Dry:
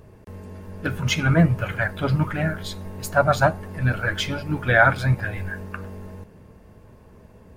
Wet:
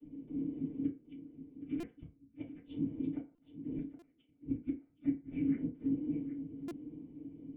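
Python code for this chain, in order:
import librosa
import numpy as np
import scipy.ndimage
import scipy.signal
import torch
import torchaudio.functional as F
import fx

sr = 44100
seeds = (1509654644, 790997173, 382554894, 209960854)

y = fx.vocoder_arp(x, sr, chord='bare fifth', root=49, every_ms=110)
y = fx.low_shelf(y, sr, hz=330.0, db=-6.5)
y = fx.rider(y, sr, range_db=4, speed_s=0.5)
y = fx.whisperise(y, sr, seeds[0])
y = fx.gate_flip(y, sr, shuts_db=-23.0, range_db=-40)
y = fx.formant_cascade(y, sr, vowel='i')
y = y + 10.0 ** (-12.5 / 20.0) * np.pad(y, (int(771 * sr / 1000.0), 0))[:len(y)]
y = fx.rev_fdn(y, sr, rt60_s=0.36, lf_ratio=0.7, hf_ratio=0.55, size_ms=20.0, drr_db=-4.5)
y = fx.buffer_glitch(y, sr, at_s=(1.8, 3.35, 3.99, 6.68), block=128, repeats=10)
y = y * 10.0 ** (1.0 / 20.0)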